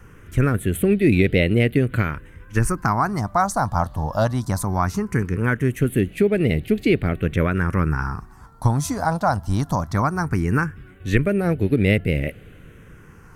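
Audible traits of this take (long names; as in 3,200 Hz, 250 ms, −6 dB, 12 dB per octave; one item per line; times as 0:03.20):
phaser sweep stages 4, 0.19 Hz, lowest notch 400–1,000 Hz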